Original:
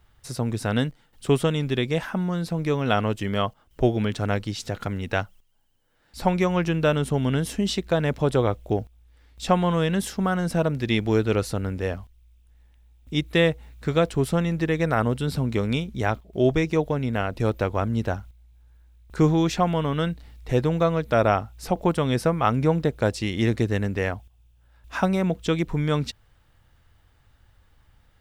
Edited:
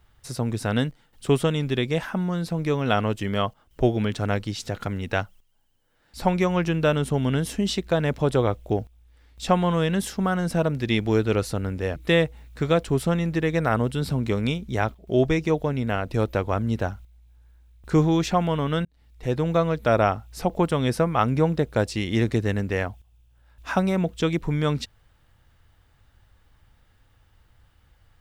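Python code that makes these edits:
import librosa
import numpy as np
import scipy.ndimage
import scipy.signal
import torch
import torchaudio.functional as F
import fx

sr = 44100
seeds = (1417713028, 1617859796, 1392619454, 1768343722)

y = fx.edit(x, sr, fx.cut(start_s=11.96, length_s=1.26),
    fx.fade_in_span(start_s=20.11, length_s=0.68), tone=tone)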